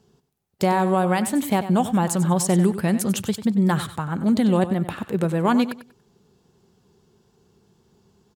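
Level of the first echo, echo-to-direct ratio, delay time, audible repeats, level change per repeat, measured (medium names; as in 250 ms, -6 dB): -12.5 dB, -12.0 dB, 95 ms, 2, -12.5 dB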